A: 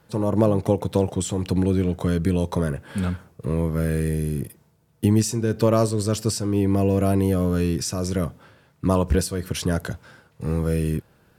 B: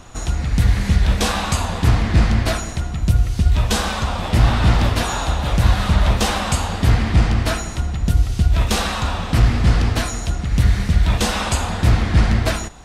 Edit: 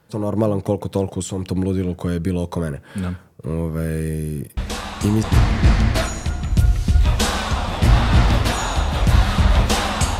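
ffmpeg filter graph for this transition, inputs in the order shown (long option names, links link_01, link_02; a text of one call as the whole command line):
ffmpeg -i cue0.wav -i cue1.wav -filter_complex "[1:a]asplit=2[link_01][link_02];[0:a]apad=whole_dur=10.19,atrim=end=10.19,atrim=end=5.232[link_03];[link_02]atrim=start=1.738:end=6.7[link_04];[link_01]atrim=start=1.08:end=1.74,asetpts=PTS-STARTPTS,volume=-8dB,afade=type=in:duration=0.004:curve=hsin,afade=type=out:start_time=0.656:duration=0.004:curve=hsin,adelay=201537S[link_05];[link_03][link_04]acrossfade=duration=0.004:curve1=hsin:curve2=hsin[link_06];[link_06][link_05]amix=inputs=2:normalize=0" out.wav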